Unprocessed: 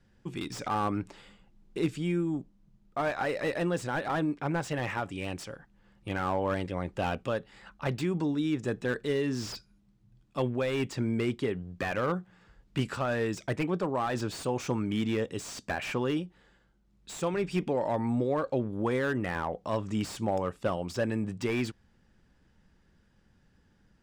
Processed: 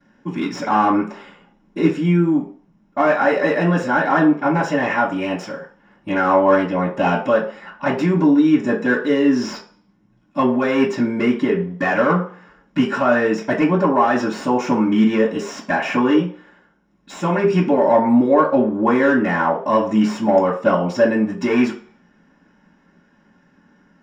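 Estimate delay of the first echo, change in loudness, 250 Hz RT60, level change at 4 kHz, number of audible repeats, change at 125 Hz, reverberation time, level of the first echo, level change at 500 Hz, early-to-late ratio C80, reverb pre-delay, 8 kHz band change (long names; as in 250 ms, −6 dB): no echo audible, +14.0 dB, 0.40 s, +7.5 dB, no echo audible, +8.5 dB, 0.45 s, no echo audible, +13.5 dB, 13.0 dB, 3 ms, can't be measured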